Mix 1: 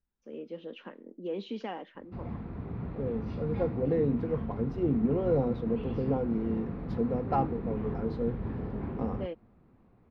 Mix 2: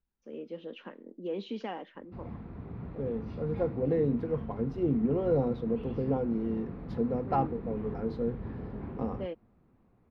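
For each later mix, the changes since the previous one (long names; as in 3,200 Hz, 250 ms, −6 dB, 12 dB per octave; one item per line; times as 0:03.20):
background −4.0 dB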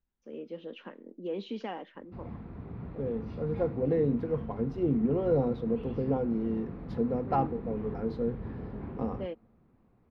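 reverb: on, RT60 1.3 s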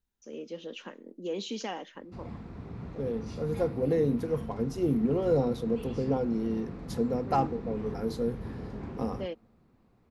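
master: remove high-frequency loss of the air 370 metres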